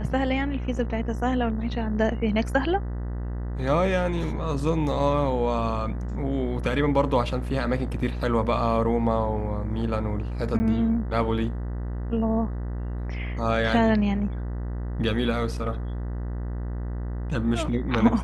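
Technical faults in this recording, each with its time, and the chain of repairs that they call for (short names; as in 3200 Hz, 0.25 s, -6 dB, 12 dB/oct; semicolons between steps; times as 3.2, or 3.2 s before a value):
buzz 60 Hz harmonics 33 -30 dBFS
10.59–10.6 gap 10 ms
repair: de-hum 60 Hz, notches 33; interpolate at 10.59, 10 ms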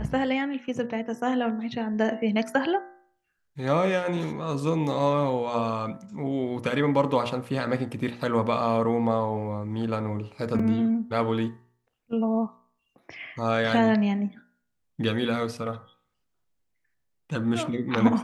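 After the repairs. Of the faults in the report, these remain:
none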